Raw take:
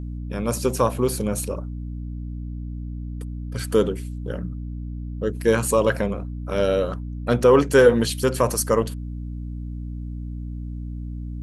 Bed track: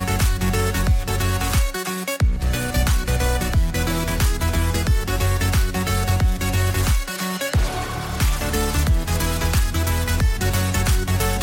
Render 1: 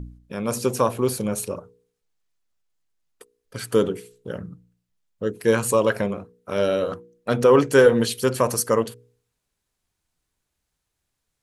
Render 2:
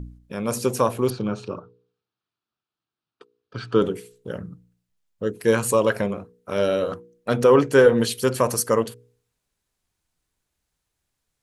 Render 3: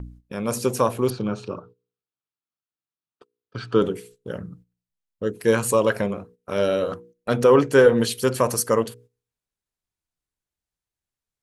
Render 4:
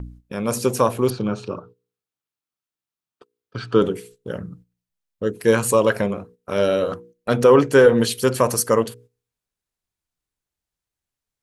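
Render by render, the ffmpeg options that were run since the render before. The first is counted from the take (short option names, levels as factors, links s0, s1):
-af "bandreject=f=60:t=h:w=4,bandreject=f=120:t=h:w=4,bandreject=f=180:t=h:w=4,bandreject=f=240:t=h:w=4,bandreject=f=300:t=h:w=4,bandreject=f=360:t=h:w=4,bandreject=f=420:t=h:w=4,bandreject=f=480:t=h:w=4"
-filter_complex "[0:a]asettb=1/sr,asplit=3[s0][s1][s2];[s0]atrim=end=1.104[s3];[s1]atrim=start=1.1:end=3.82,asetpts=PTS-STARTPTS,afade=t=in:d=0.004:c=qsin,afade=t=out:st=2.716:d=0.004:c=qsin,highpass=120,equalizer=f=120:t=q:w=4:g=7,equalizer=f=340:t=q:w=4:g=4,equalizer=f=550:t=q:w=4:g=-6,equalizer=f=1300:t=q:w=4:g=6,equalizer=f=2000:t=q:w=4:g=-9,lowpass=f=4400:w=0.5412,lowpass=f=4400:w=1.3066[s4];[s2]atrim=start=3.816[s5];[s3][s4]acrossfade=d=0.004:c1=hsin:c2=qsin[s6];[s6][s5]acrossfade=d=0.004:c1=qsin:c2=hsin,asettb=1/sr,asplit=3[s7][s8][s9];[s7]atrim=end=7.544[s10];[s8]atrim=start=7.54:end=7.98,asetpts=PTS-STARTPTS,afade=t=in:d=0.004:c=qsin,afade=t=out:st=0.436:d=0.004:c=qsin,highshelf=f=4600:g=-6.5[s11];[s9]atrim=start=7.976[s12];[s10][s11]acrossfade=d=0.004:c1=hsin:c2=qsin[s13];[s13][s12]acrossfade=d=0.004:c1=qsin:c2=hsin"
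-af "agate=range=0.251:threshold=0.00447:ratio=16:detection=peak"
-af "volume=1.33,alimiter=limit=0.708:level=0:latency=1"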